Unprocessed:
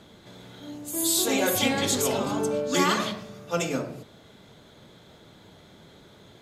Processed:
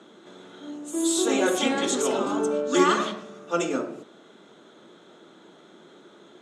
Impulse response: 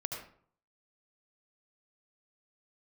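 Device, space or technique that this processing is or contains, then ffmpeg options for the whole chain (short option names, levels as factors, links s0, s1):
television speaker: -af "highpass=f=200:w=0.5412,highpass=f=200:w=1.3066,equalizer=f=350:t=q:w=4:g=8,equalizer=f=1300:t=q:w=4:g=6,equalizer=f=2200:t=q:w=4:g=-4,equalizer=f=4700:t=q:w=4:g=-10,lowpass=f=8600:w=0.5412,lowpass=f=8600:w=1.3066"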